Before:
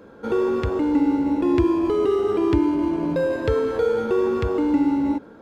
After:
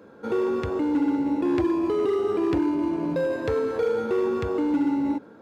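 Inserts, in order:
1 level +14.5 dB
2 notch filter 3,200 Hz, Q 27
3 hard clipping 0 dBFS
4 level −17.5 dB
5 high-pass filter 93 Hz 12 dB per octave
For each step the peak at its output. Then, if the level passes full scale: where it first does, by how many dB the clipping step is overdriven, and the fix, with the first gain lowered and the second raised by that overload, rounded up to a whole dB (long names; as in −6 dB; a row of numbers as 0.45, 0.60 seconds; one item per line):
+8.5, +8.5, 0.0, −17.5, −14.0 dBFS
step 1, 8.5 dB
step 1 +5.5 dB, step 4 −8.5 dB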